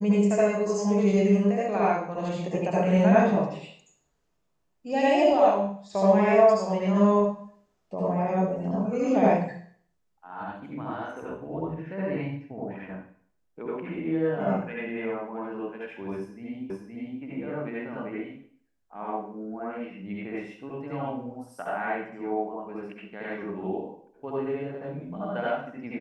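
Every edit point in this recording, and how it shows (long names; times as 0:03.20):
0:16.70: the same again, the last 0.52 s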